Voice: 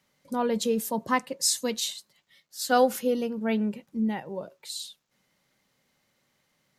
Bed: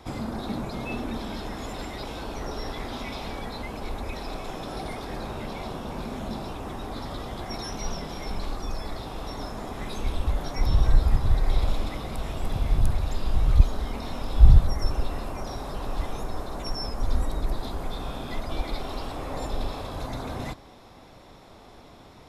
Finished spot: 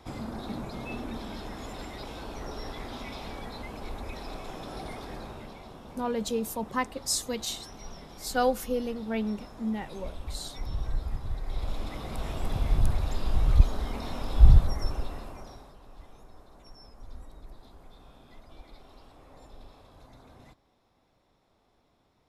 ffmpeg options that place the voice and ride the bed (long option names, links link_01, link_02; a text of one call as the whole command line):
ffmpeg -i stem1.wav -i stem2.wav -filter_complex "[0:a]adelay=5650,volume=-4dB[link_01];[1:a]volume=5dB,afade=type=out:start_time=5.03:duration=0.59:silence=0.446684,afade=type=in:start_time=11.46:duration=0.8:silence=0.316228,afade=type=out:start_time=14.51:duration=1.25:silence=0.125893[link_02];[link_01][link_02]amix=inputs=2:normalize=0" out.wav